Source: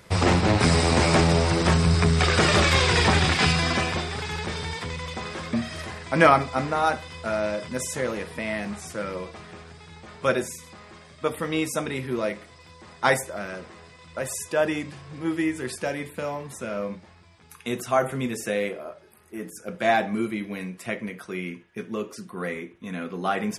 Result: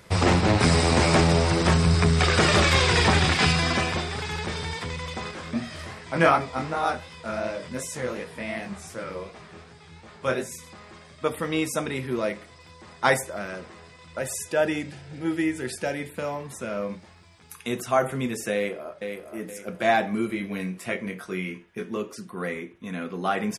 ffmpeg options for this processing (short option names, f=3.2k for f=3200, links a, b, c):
-filter_complex "[0:a]asettb=1/sr,asplit=3[a][b][c];[a]atrim=end=5.314[d];[b]atrim=start=5.31:end=10.52,asetpts=PTS-STARTPTS,afade=t=in:d=0.004:c=qsin,afade=t=out:st=5.206:d=0.004:c=qsin,flanger=delay=16.5:depth=7.6:speed=2.7[e];[c]atrim=start=10.516[f];[d][e]acrossfade=d=0.004:c1=hsin:c2=qsin[g];[g][f]acrossfade=d=0.004:c1=qsin:c2=hsin,asettb=1/sr,asplit=3[h][i][j];[h]atrim=end=14.184[k];[i]atrim=start=14.18:end=16.14,asetpts=PTS-STARTPTS,afade=t=in:d=0.004:c=qsin,afade=t=out:st=1.956:d=0.004:c=qsin,asuperstop=centerf=1100:order=4:qfactor=4.6[l];[j]atrim=start=16.136[m];[k][l]acrossfade=d=0.004:c1=hsin:c2=qsin[n];[n][m]acrossfade=d=0.004:c1=qsin:c2=hsin,asettb=1/sr,asplit=3[o][p][q];[o]atrim=end=16.894[r];[p]atrim=start=16.89:end=17.67,asetpts=PTS-STARTPTS,afade=t=in:d=0.004:c=qsin,afade=t=out:st=0.776:d=0.004:c=qsin,highshelf=f=4.1k:g=6[s];[q]atrim=start=17.666[t];[r][s]acrossfade=d=0.004:c1=hsin:c2=qsin[u];[u][t]acrossfade=d=0.004:c1=qsin:c2=hsin,asplit=2[v][w];[w]afade=t=in:st=18.54:d=0.01,afade=t=out:st=19.36:d=0.01,aecho=0:1:470|940|1410|1880:0.473151|0.165603|0.057961|0.0202864[x];[v][x]amix=inputs=2:normalize=0,asettb=1/sr,asplit=3[y][z][aa];[y]atrim=end=20.274[ab];[z]atrim=start=20.27:end=21.97,asetpts=PTS-STARTPTS,afade=t=in:d=0.004:c=qsin,afade=t=out:st=1.696:d=0.004:c=qsin,asplit=2[ac][ad];[ad]adelay=21,volume=-4.5dB[ae];[ac][ae]amix=inputs=2:normalize=0,atrim=end_sample=74970[af];[aa]atrim=start=21.966[ag];[ab][af]acrossfade=d=0.004:c1=hsin:c2=qsin[ah];[ah][ag]acrossfade=d=0.004:c1=qsin:c2=hsin"